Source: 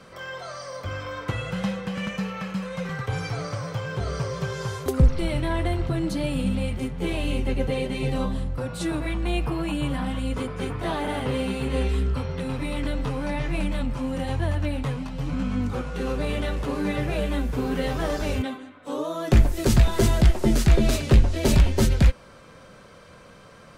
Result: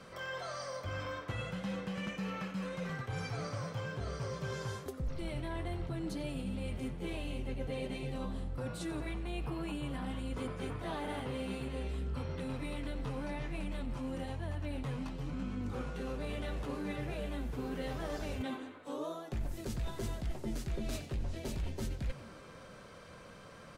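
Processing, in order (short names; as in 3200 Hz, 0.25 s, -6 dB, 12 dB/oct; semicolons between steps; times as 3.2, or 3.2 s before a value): reverse; compressor 6:1, threshold -31 dBFS, peak gain reduction 18 dB; reverse; frequency-shifting echo 91 ms, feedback 58%, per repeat +86 Hz, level -17 dB; gain -4.5 dB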